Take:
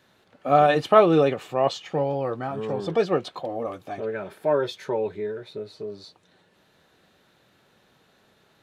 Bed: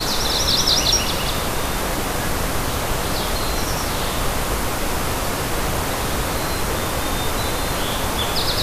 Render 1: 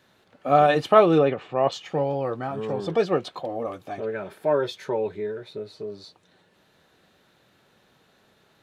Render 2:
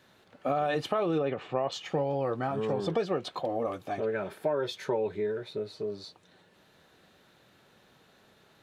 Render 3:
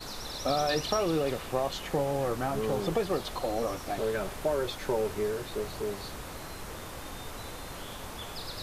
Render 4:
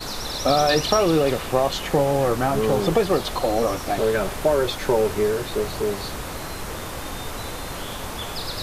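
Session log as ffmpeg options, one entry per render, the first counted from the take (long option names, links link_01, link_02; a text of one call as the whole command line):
ffmpeg -i in.wav -filter_complex "[0:a]asplit=3[link_01][link_02][link_03];[link_01]afade=type=out:start_time=1.18:duration=0.02[link_04];[link_02]lowpass=3000,afade=type=in:start_time=1.18:duration=0.02,afade=type=out:start_time=1.71:duration=0.02[link_05];[link_03]afade=type=in:start_time=1.71:duration=0.02[link_06];[link_04][link_05][link_06]amix=inputs=3:normalize=0" out.wav
ffmpeg -i in.wav -af "alimiter=limit=-13.5dB:level=0:latency=1:release=42,acompressor=threshold=-25dB:ratio=6" out.wav
ffmpeg -i in.wav -i bed.wav -filter_complex "[1:a]volume=-19dB[link_01];[0:a][link_01]amix=inputs=2:normalize=0" out.wav
ffmpeg -i in.wav -af "volume=9.5dB" out.wav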